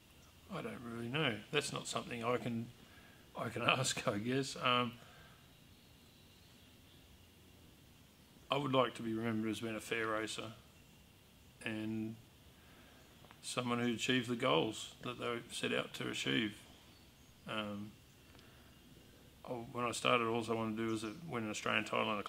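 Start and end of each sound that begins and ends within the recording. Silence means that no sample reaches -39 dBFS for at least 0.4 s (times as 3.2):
0.53–2.63
3.37–4.89
8.51–10.47
11.66–12.11
13.31–16.49
17.49–17.83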